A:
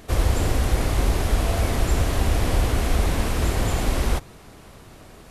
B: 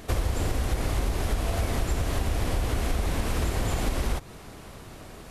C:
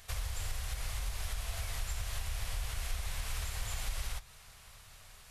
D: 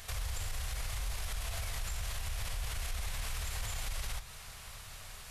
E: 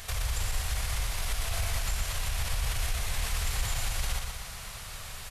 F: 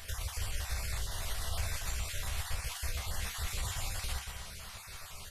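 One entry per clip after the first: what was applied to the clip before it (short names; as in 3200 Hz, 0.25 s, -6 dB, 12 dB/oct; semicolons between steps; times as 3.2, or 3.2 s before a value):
compressor, threshold -24 dBFS, peak gain reduction 10 dB; gain +1.5 dB
passive tone stack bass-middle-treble 10-0-10; flange 1.8 Hz, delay 8.7 ms, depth 1.5 ms, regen -75%; gain +1 dB
limiter -36 dBFS, peak gain reduction 11 dB; gain +7 dB
feedback echo 0.12 s, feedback 53%, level -5 dB; gain +5.5 dB
random spectral dropouts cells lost 25%; resonator bank C2 major, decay 0.22 s; gain +5 dB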